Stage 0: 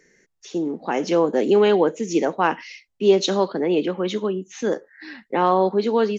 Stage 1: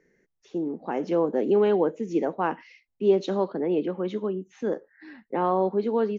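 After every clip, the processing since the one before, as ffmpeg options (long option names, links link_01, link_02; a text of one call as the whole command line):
ffmpeg -i in.wav -af "lowpass=frequency=1000:poles=1,volume=-4dB" out.wav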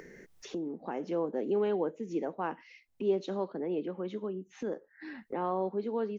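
ffmpeg -i in.wav -af "acompressor=mode=upward:threshold=-24dB:ratio=2.5,volume=-8.5dB" out.wav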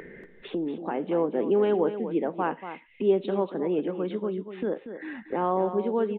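ffmpeg -i in.wav -af "aresample=8000,aresample=44100,aecho=1:1:236:0.299,volume=6.5dB" out.wav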